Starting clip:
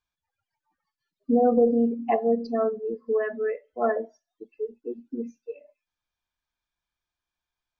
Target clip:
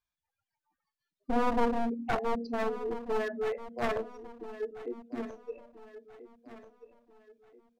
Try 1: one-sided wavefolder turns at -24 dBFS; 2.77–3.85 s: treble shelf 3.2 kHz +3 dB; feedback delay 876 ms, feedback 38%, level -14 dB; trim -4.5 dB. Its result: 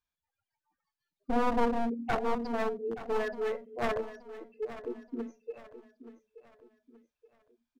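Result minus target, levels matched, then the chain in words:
echo 459 ms early
one-sided wavefolder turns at -24 dBFS; 2.77–3.85 s: treble shelf 3.2 kHz +3 dB; feedback delay 1335 ms, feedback 38%, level -14 dB; trim -4.5 dB

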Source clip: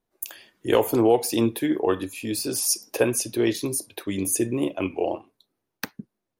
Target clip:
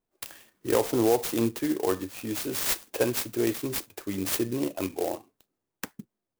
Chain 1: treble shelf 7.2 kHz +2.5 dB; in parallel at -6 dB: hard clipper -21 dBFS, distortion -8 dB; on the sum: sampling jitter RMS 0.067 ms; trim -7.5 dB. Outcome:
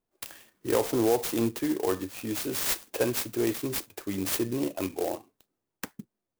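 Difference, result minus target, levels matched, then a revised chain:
hard clipper: distortion +14 dB
treble shelf 7.2 kHz +2.5 dB; in parallel at -6 dB: hard clipper -12 dBFS, distortion -22 dB; on the sum: sampling jitter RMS 0.067 ms; trim -7.5 dB

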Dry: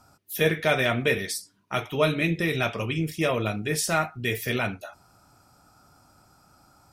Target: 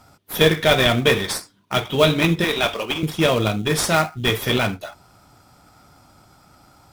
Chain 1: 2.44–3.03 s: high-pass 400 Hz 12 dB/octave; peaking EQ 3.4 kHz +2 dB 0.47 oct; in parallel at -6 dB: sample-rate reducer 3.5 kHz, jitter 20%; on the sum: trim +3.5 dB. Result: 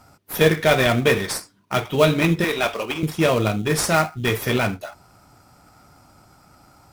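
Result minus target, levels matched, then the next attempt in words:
4 kHz band -5.0 dB
2.44–3.03 s: high-pass 400 Hz 12 dB/octave; peaking EQ 3.4 kHz +9.5 dB 0.47 oct; in parallel at -6 dB: sample-rate reducer 3.5 kHz, jitter 20%; on the sum: trim +3.5 dB

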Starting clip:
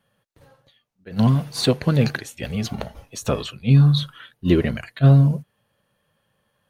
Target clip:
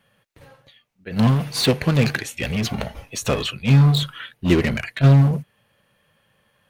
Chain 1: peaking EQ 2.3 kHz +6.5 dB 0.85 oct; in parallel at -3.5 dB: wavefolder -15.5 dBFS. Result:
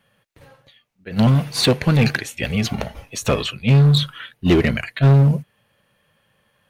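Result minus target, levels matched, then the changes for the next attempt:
wavefolder: distortion -12 dB
change: wavefolder -24 dBFS

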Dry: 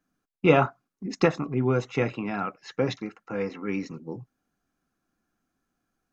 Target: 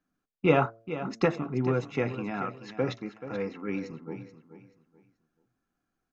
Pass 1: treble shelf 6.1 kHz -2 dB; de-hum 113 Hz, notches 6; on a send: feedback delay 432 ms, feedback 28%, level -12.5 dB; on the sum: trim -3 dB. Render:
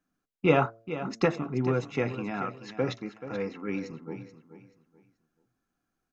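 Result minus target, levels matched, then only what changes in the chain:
8 kHz band +3.0 dB
change: treble shelf 6.1 kHz -8 dB

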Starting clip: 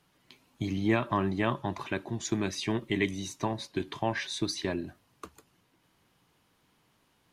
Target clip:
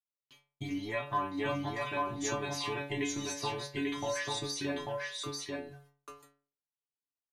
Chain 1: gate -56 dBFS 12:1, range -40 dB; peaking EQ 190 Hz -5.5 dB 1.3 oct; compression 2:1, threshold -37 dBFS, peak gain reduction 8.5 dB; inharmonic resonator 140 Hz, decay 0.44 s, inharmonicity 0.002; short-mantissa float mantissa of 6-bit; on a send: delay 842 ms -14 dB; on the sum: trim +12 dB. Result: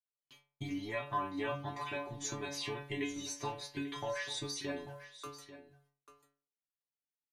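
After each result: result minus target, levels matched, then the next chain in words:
echo-to-direct -11.5 dB; compression: peak gain reduction +3 dB
gate -56 dBFS 12:1, range -40 dB; peaking EQ 190 Hz -5.5 dB 1.3 oct; compression 2:1, threshold -37 dBFS, peak gain reduction 8.5 dB; inharmonic resonator 140 Hz, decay 0.44 s, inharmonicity 0.002; short-mantissa float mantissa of 6-bit; on a send: delay 842 ms -2.5 dB; on the sum: trim +12 dB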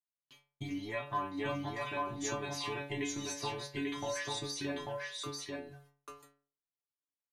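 compression: peak gain reduction +3 dB
gate -56 dBFS 12:1, range -40 dB; peaking EQ 190 Hz -5.5 dB 1.3 oct; compression 2:1, threshold -31 dBFS, peak gain reduction 5.5 dB; inharmonic resonator 140 Hz, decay 0.44 s, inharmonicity 0.002; short-mantissa float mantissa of 6-bit; on a send: delay 842 ms -2.5 dB; on the sum: trim +12 dB

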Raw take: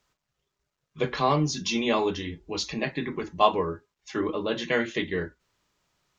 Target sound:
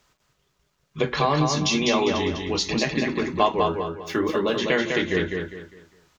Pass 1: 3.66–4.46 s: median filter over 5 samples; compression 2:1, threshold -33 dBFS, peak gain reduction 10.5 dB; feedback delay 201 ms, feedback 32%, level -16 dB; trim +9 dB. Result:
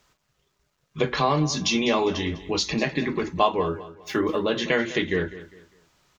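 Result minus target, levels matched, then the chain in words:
echo-to-direct -11.5 dB
3.66–4.46 s: median filter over 5 samples; compression 2:1, threshold -33 dBFS, peak gain reduction 10.5 dB; feedback delay 201 ms, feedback 32%, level -4.5 dB; trim +9 dB

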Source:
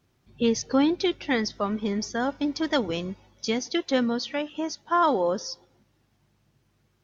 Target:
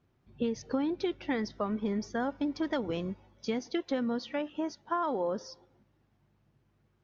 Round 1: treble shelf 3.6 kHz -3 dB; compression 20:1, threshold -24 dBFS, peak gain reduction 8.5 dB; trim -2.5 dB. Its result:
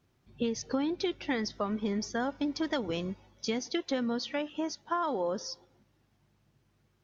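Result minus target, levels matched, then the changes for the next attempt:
8 kHz band +8.5 dB
change: treble shelf 3.6 kHz -15 dB

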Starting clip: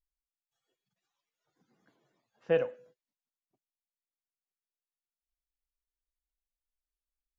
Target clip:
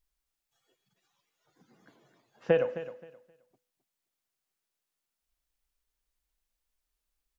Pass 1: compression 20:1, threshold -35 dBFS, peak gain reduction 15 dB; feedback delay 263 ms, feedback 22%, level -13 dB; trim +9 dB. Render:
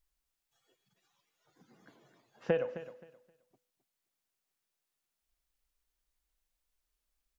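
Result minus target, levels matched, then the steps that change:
compression: peak gain reduction +6 dB
change: compression 20:1, threshold -28.5 dBFS, peak gain reduction 8.5 dB

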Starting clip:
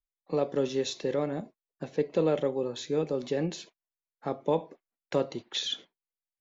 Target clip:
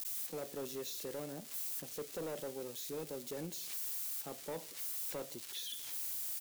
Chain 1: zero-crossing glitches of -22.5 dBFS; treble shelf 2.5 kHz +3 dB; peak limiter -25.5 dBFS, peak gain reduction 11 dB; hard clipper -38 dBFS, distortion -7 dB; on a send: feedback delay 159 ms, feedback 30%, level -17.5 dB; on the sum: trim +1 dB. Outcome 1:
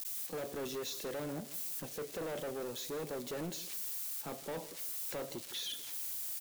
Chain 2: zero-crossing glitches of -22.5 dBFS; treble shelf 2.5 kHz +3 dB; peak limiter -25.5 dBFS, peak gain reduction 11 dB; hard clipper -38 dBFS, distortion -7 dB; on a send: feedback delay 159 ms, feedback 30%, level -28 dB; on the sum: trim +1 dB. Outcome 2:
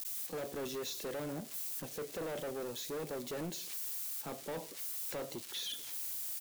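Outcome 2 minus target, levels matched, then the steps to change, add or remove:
zero-crossing glitches: distortion -8 dB
change: zero-crossing glitches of -14.5 dBFS

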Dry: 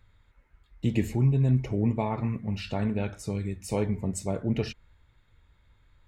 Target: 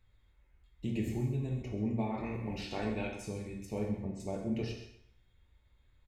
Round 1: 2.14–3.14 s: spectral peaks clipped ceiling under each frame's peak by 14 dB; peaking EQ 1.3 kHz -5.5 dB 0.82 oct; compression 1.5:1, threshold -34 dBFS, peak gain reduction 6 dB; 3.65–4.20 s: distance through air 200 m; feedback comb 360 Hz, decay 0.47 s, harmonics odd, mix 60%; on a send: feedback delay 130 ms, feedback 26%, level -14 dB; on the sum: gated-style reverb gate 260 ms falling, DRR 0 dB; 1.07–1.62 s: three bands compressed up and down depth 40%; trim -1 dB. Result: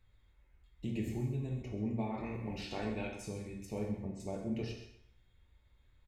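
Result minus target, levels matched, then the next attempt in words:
compression: peak gain reduction +2.5 dB
2.14–3.14 s: spectral peaks clipped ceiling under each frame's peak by 14 dB; peaking EQ 1.3 kHz -5.5 dB 0.82 oct; compression 1.5:1, threshold -26 dBFS, peak gain reduction 3 dB; 3.65–4.20 s: distance through air 200 m; feedback comb 360 Hz, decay 0.47 s, harmonics odd, mix 60%; on a send: feedback delay 130 ms, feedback 26%, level -14 dB; on the sum: gated-style reverb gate 260 ms falling, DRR 0 dB; 1.07–1.62 s: three bands compressed up and down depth 40%; trim -1 dB

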